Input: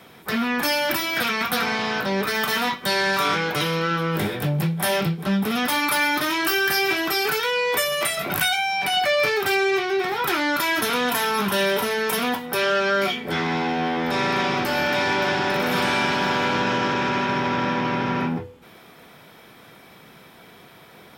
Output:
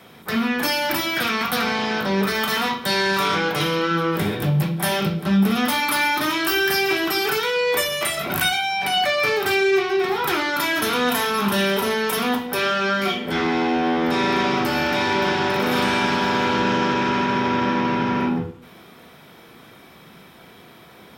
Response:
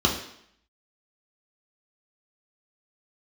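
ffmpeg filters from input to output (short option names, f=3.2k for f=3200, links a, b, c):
-filter_complex "[0:a]asplit=2[a][b];[1:a]atrim=start_sample=2205,asetrate=43218,aresample=44100,adelay=36[c];[b][c]afir=irnorm=-1:irlink=0,volume=-22dB[d];[a][d]amix=inputs=2:normalize=0"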